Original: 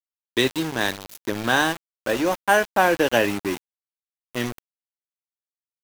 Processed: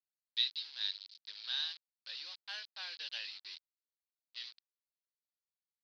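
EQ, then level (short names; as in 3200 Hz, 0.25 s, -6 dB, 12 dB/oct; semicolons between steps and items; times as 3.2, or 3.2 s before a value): Butterworth band-pass 4600 Hz, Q 3.7; air absorption 420 m; +14.0 dB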